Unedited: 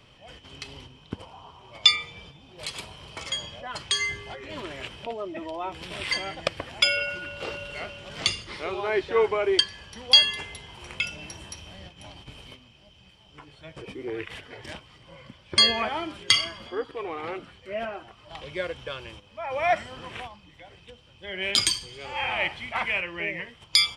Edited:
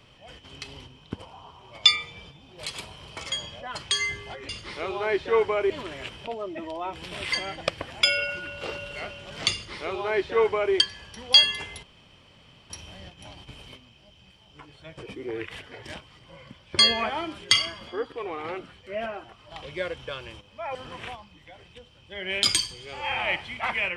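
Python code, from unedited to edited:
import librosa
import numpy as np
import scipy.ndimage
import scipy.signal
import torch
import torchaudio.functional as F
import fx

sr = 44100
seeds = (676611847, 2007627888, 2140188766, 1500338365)

y = fx.edit(x, sr, fx.duplicate(start_s=8.32, length_s=1.21, to_s=4.49),
    fx.room_tone_fill(start_s=10.62, length_s=0.87),
    fx.cut(start_s=19.54, length_s=0.33), tone=tone)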